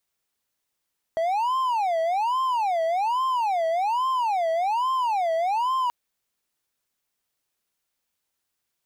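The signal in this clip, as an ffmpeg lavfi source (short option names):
-f lavfi -i "aevalsrc='0.112*(1-4*abs(mod((850*t-200/(2*PI*1.2)*sin(2*PI*1.2*t))+0.25,1)-0.5))':d=4.73:s=44100"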